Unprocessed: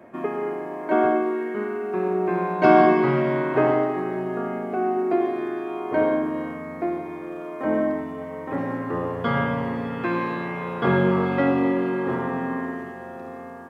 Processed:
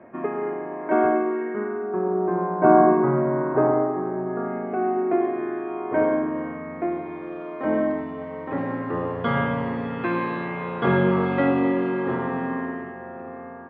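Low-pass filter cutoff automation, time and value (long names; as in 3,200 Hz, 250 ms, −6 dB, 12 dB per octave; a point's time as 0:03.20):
low-pass filter 24 dB per octave
0:01.41 2,400 Hz
0:02.04 1,400 Hz
0:04.15 1,400 Hz
0:04.73 2,400 Hz
0:06.49 2,400 Hz
0:07.34 4,100 Hz
0:12.43 4,100 Hz
0:13.03 2,400 Hz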